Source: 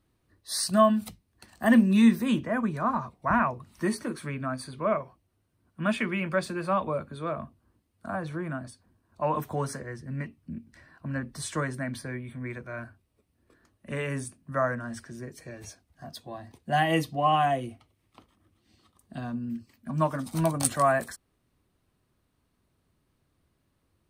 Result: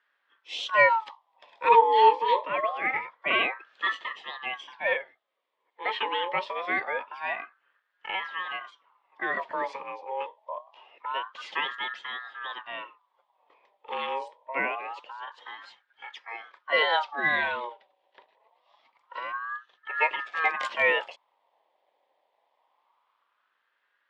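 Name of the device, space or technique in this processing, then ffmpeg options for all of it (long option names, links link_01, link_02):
voice changer toy: -filter_complex "[0:a]asettb=1/sr,asplit=3[link_01][link_02][link_03];[link_01]atrim=end=4.044[link_04];[link_02]atrim=start=4.04:end=6.03,asetpts=PTS-STARTPTS,afade=type=in:duration=0.004:curve=qsin,afade=type=out:start_time=1.986:duration=0.004:curve=qsin,highpass=300[link_05];[link_03]atrim=start=6.026[link_06];[link_04][link_05]acrossfade=duration=0.004:curve1=hsin:curve2=qsin[link_07];[link_07][link_06]acrossfade=duration=0.004:curve1=qsin:curve2=hsin,aeval=exprs='val(0)*sin(2*PI*1100*n/s+1100*0.4/0.25*sin(2*PI*0.25*n/s))':channel_layout=same,highpass=500,equalizer=frequency=540:width_type=q:width=4:gain=4,equalizer=frequency=960:width_type=q:width=4:gain=5,equalizer=frequency=1400:width_type=q:width=4:gain=-7,equalizer=frequency=2000:width_type=q:width=4:gain=3,equalizer=frequency=3300:width_type=q:width=4:gain=5,lowpass=frequency=4000:width=0.5412,lowpass=frequency=4000:width=1.3066,volume=2.5dB"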